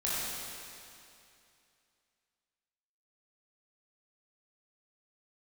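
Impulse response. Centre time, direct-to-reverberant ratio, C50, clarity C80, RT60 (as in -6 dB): 178 ms, -8.5 dB, -4.5 dB, -2.5 dB, 2.6 s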